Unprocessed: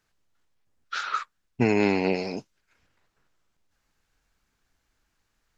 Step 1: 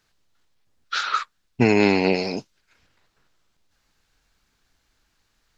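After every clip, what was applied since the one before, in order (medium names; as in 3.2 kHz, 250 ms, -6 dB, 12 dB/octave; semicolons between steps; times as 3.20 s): peaking EQ 4.1 kHz +5 dB 0.95 oct; trim +4.5 dB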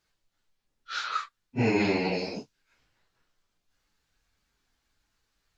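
phase randomisation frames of 100 ms; trim -7 dB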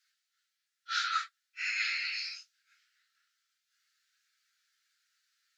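rippled Chebyshev high-pass 1.3 kHz, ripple 3 dB; trim +3 dB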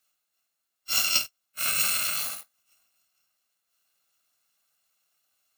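bit-reversed sample order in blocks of 128 samples; in parallel at -3 dB: word length cut 8-bit, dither none; on the sum: trim +3 dB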